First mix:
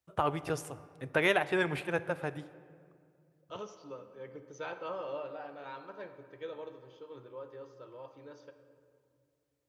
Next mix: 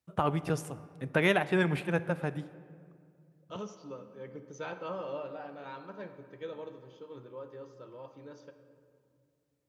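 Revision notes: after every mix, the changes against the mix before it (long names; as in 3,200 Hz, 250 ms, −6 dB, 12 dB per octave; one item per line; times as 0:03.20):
second voice: remove low-pass filter 6,400 Hz
master: add parametric band 190 Hz +10.5 dB 0.88 octaves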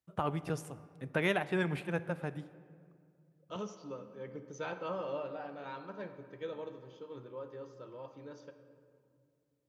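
first voice −5.0 dB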